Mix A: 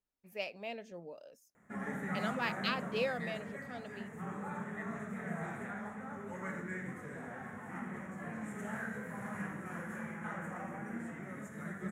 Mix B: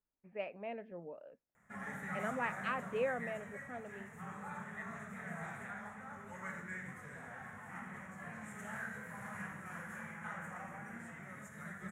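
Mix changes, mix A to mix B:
speech: add low-pass 2.1 kHz 24 dB/octave; background: add peaking EQ 320 Hz -13 dB 1.6 oct

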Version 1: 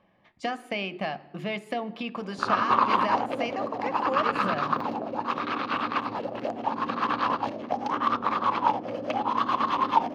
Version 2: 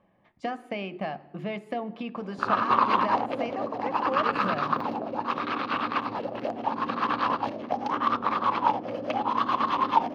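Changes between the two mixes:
speech: add treble shelf 2.2 kHz -11 dB; background: add peaking EQ 7.5 kHz -6 dB 0.48 oct

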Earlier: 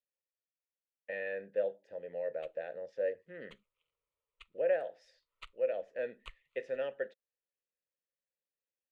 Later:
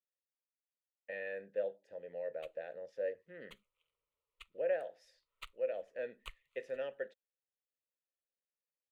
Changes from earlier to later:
speech -4.0 dB; master: remove distance through air 68 m

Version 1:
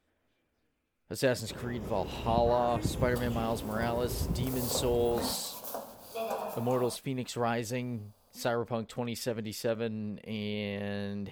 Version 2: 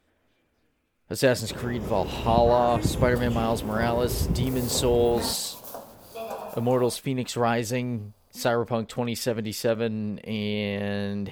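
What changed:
speech +7.0 dB; first sound +7.0 dB

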